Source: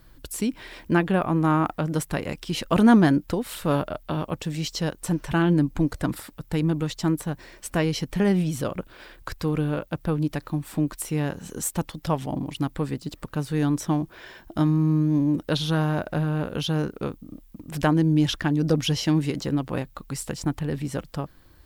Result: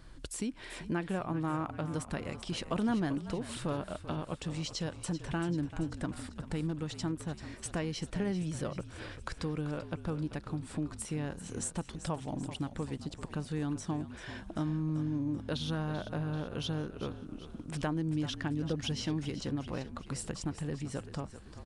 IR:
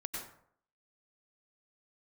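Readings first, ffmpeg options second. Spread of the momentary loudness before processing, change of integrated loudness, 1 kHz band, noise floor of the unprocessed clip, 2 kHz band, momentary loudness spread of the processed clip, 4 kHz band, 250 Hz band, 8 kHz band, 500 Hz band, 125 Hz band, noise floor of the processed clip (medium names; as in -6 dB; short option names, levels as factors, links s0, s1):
13 LU, -11.5 dB, -12.0 dB, -53 dBFS, -11.0 dB, 8 LU, -9.0 dB, -12.0 dB, -8.0 dB, -11.0 dB, -11.0 dB, -50 dBFS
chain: -filter_complex "[0:a]acompressor=threshold=0.00891:ratio=2,asplit=7[s0][s1][s2][s3][s4][s5][s6];[s1]adelay=388,afreqshift=-45,volume=0.237[s7];[s2]adelay=776,afreqshift=-90,volume=0.135[s8];[s3]adelay=1164,afreqshift=-135,volume=0.0767[s9];[s4]adelay=1552,afreqshift=-180,volume=0.0442[s10];[s5]adelay=1940,afreqshift=-225,volume=0.0251[s11];[s6]adelay=2328,afreqshift=-270,volume=0.0143[s12];[s0][s7][s8][s9][s10][s11][s12]amix=inputs=7:normalize=0,aresample=22050,aresample=44100"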